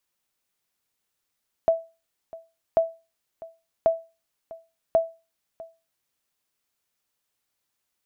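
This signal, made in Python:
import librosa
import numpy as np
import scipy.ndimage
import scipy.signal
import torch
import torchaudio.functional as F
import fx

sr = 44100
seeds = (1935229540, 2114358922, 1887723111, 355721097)

y = fx.sonar_ping(sr, hz=658.0, decay_s=0.29, every_s=1.09, pings=4, echo_s=0.65, echo_db=-20.5, level_db=-11.5)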